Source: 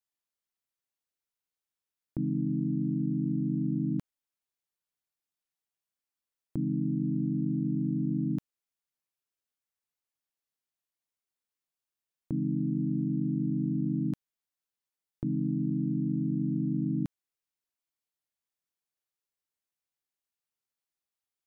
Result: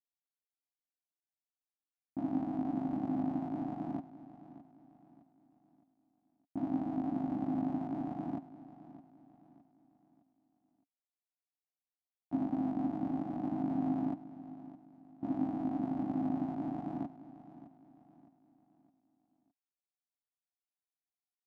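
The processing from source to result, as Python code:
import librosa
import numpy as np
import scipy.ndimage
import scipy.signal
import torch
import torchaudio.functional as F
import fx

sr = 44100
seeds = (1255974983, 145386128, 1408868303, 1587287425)

y = fx.cycle_switch(x, sr, every=2, mode='muted')
y = fx.double_bandpass(y, sr, hz=450.0, octaves=1.4)
y = fx.echo_feedback(y, sr, ms=613, feedback_pct=40, wet_db=-10.0)
y = fx.upward_expand(y, sr, threshold_db=-53.0, expansion=1.5)
y = F.gain(torch.from_numpy(y), 8.5).numpy()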